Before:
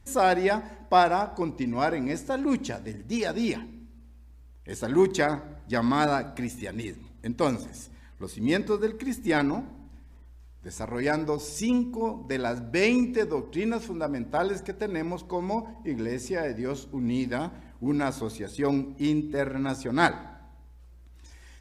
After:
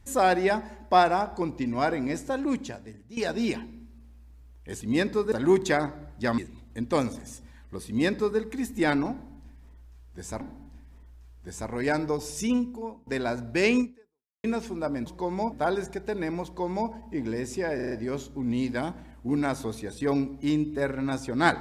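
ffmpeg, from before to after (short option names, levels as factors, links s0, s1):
-filter_complex "[0:a]asplit=14[s0][s1][s2][s3][s4][s5][s6][s7][s8][s9][s10][s11][s12][s13];[s0]atrim=end=3.17,asetpts=PTS-STARTPTS,afade=t=out:st=2.29:d=0.88:silence=0.158489[s14];[s1]atrim=start=3.17:end=4.812,asetpts=PTS-STARTPTS,afade=t=in:d=0.004:c=hsin:silence=0.158489[s15];[s2]atrim=start=8.348:end=8.862[s16];[s3]atrim=start=4.808:end=5.872[s17];[s4]atrim=start=6.858:end=10.892[s18];[s5]atrim=start=9.598:end=12.26,asetpts=PTS-STARTPTS,afade=t=out:st=2.092:d=0.57:silence=0.0668344[s19];[s6]atrim=start=12.26:end=13.63,asetpts=PTS-STARTPTS,afade=t=in:d=0.004:c=hsin:silence=0.0668344,afade=t=out:st=0.73:d=0.64:c=exp[s20];[s7]atrim=start=13.63:end=14.252,asetpts=PTS-STARTPTS,afade=t=in:d=0.004:c=hsin[s21];[s8]atrim=start=15.168:end=15.632[s22];[s9]atrim=start=14.248:end=16.522[s23];[s10]atrim=start=16.478:end=16.522[s24];[s11]atrim=start=16.478:end=16.522[s25];[s12]atrim=start=16.478:end=16.522[s26];[s13]atrim=start=16.478[s27];[s14][s15]concat=n=2:v=0:a=1[s28];[s28][s16]acrossfade=d=0.004:c1=hsin:c2=hsin[s29];[s29][s17]acrossfade=d=0.004:c1=hsin:c2=hsin[s30];[s30][s18]acrossfade=d=0.004:c1=hsin:c2=hsin[s31];[s19][s20][s21]concat=n=3:v=0:a=1[s32];[s31][s32]acrossfade=d=0.004:c1=hsin:c2=hsin[s33];[s33][s22]acrossfade=d=0.004:c1=hsin:c2=hsin[s34];[s34][s23]acrossfade=d=0.004:c1=hsin:c2=hsin[s35];[s35][s24]acrossfade=d=0.004:c1=hsin:c2=hsin[s36];[s36][s25]acrossfade=d=0.004:c1=hsin:c2=hsin[s37];[s37][s26]acrossfade=d=0.004:c1=hsin:c2=hsin[s38];[s38][s27]acrossfade=d=0.004:c1=hsin:c2=hsin"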